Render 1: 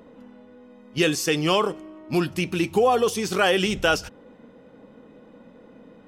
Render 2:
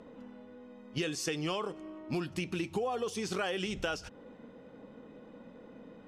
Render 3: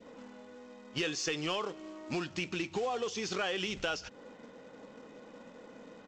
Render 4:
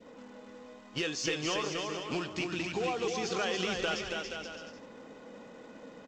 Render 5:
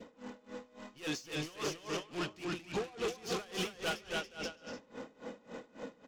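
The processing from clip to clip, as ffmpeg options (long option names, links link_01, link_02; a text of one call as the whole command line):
ffmpeg -i in.wav -af "lowpass=9100,acompressor=threshold=-29dB:ratio=5,volume=-3dB" out.wav
ffmpeg -i in.wav -filter_complex "[0:a]adynamicequalizer=threshold=0.00316:dfrequency=1100:dqfactor=0.76:tfrequency=1100:tqfactor=0.76:attack=5:release=100:ratio=0.375:range=2:mode=cutabove:tftype=bell,aresample=16000,acrusher=bits=5:mode=log:mix=0:aa=0.000001,aresample=44100,asplit=2[link_01][link_02];[link_02]highpass=frequency=720:poles=1,volume=9dB,asoftclip=type=tanh:threshold=-20dB[link_03];[link_01][link_03]amix=inputs=2:normalize=0,lowpass=frequency=5800:poles=1,volume=-6dB" out.wav
ffmpeg -i in.wav -af "aecho=1:1:280|476|613.2|709.2|776.5:0.631|0.398|0.251|0.158|0.1" out.wav
ffmpeg -i in.wav -af "asoftclip=type=tanh:threshold=-37dB,aeval=exprs='val(0)*pow(10,-23*(0.5-0.5*cos(2*PI*3.6*n/s))/20)':channel_layout=same,volume=7dB" out.wav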